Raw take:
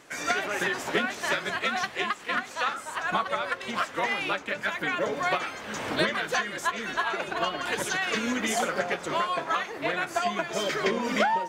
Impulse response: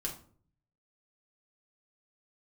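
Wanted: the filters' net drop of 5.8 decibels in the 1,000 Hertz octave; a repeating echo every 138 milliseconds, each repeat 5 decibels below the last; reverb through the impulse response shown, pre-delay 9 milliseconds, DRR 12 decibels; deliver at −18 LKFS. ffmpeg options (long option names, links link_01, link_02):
-filter_complex "[0:a]equalizer=frequency=1000:width_type=o:gain=-8,aecho=1:1:138|276|414|552|690|828|966:0.562|0.315|0.176|0.0988|0.0553|0.031|0.0173,asplit=2[link_01][link_02];[1:a]atrim=start_sample=2205,adelay=9[link_03];[link_02][link_03]afir=irnorm=-1:irlink=0,volume=-13dB[link_04];[link_01][link_04]amix=inputs=2:normalize=0,volume=10.5dB"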